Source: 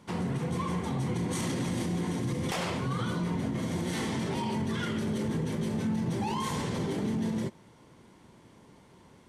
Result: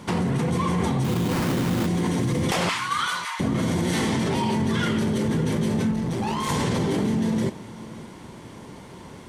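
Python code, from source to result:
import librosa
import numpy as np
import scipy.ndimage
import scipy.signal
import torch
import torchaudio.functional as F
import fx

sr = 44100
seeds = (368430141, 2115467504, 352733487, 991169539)

p1 = fx.steep_highpass(x, sr, hz=1000.0, slope=36, at=(2.69, 3.4))
p2 = fx.over_compress(p1, sr, threshold_db=-36.0, ratio=-0.5)
p3 = p1 + F.gain(torch.from_numpy(p2), -2.0).numpy()
p4 = fx.sample_hold(p3, sr, seeds[0], rate_hz=3400.0, jitter_pct=20, at=(1.03, 1.86), fade=0.02)
p5 = fx.tube_stage(p4, sr, drive_db=24.0, bias=0.55, at=(5.91, 6.49))
p6 = p5 + fx.echo_single(p5, sr, ms=557, db=-18.5, dry=0)
y = F.gain(torch.from_numpy(p6), 5.5).numpy()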